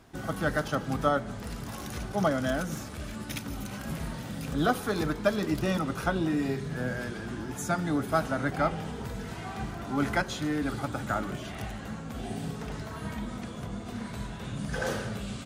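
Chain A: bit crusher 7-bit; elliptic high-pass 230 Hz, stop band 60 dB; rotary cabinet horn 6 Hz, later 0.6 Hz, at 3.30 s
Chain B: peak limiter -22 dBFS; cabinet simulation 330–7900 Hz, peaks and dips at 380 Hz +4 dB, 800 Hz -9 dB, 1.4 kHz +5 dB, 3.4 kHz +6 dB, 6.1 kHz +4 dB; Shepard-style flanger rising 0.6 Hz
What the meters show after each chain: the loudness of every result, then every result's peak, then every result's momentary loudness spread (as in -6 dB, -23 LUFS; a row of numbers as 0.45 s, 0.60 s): -36.0 LUFS, -40.5 LUFS; -15.5 dBFS, -22.5 dBFS; 11 LU, 9 LU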